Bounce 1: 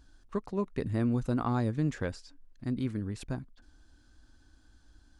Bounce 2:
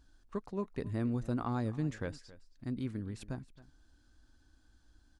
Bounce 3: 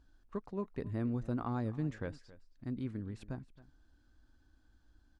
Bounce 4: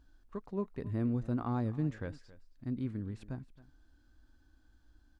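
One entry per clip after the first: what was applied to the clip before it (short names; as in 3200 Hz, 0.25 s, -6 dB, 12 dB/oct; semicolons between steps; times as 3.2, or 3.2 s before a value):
echo 0.271 s -19 dB; gain -5 dB
high shelf 4400 Hz -11 dB; gain -1.5 dB
harmonic-percussive split harmonic +5 dB; gain -2 dB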